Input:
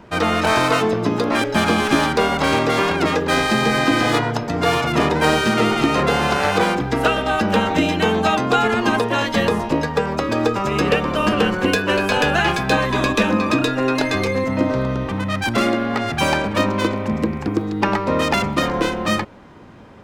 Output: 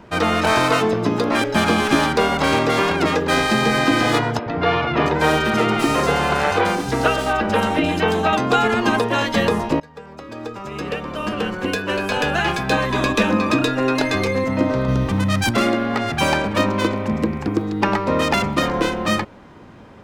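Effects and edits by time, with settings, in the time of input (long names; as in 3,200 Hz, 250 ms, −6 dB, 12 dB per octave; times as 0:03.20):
0:04.39–0:08.33: three-band delay without the direct sound mids, lows, highs 70/580 ms, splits 200/4,000 Hz
0:09.80–0:13.31: fade in, from −23.5 dB
0:14.88–0:15.51: bass and treble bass +6 dB, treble +8 dB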